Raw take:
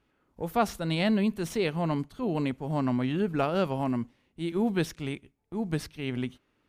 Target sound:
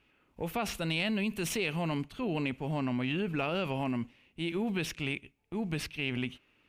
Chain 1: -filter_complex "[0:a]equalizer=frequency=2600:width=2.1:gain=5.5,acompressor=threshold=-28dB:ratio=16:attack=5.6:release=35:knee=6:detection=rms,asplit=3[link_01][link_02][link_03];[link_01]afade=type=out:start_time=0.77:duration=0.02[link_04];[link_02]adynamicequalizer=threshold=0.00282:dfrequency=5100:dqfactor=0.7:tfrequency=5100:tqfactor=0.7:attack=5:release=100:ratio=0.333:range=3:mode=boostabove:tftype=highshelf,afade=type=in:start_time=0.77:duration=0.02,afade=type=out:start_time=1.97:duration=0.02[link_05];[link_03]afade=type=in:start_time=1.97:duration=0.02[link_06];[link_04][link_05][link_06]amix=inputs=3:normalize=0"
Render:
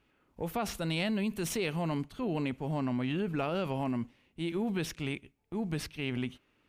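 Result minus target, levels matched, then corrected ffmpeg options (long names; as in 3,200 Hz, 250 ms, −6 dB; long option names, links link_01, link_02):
2,000 Hz band −3.5 dB
-filter_complex "[0:a]equalizer=frequency=2600:width=2.1:gain=13,acompressor=threshold=-28dB:ratio=16:attack=5.6:release=35:knee=6:detection=rms,asplit=3[link_01][link_02][link_03];[link_01]afade=type=out:start_time=0.77:duration=0.02[link_04];[link_02]adynamicequalizer=threshold=0.00282:dfrequency=5100:dqfactor=0.7:tfrequency=5100:tqfactor=0.7:attack=5:release=100:ratio=0.333:range=3:mode=boostabove:tftype=highshelf,afade=type=in:start_time=0.77:duration=0.02,afade=type=out:start_time=1.97:duration=0.02[link_05];[link_03]afade=type=in:start_time=1.97:duration=0.02[link_06];[link_04][link_05][link_06]amix=inputs=3:normalize=0"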